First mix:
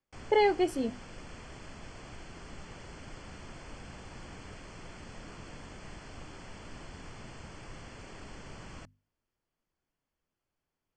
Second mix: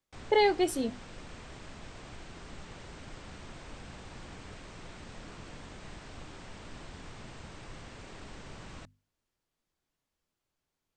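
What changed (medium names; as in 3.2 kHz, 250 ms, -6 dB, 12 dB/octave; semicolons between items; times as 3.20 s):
speech: remove low-pass 3.1 kHz 6 dB/octave; master: remove Butterworth band-stop 3.8 kHz, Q 6.1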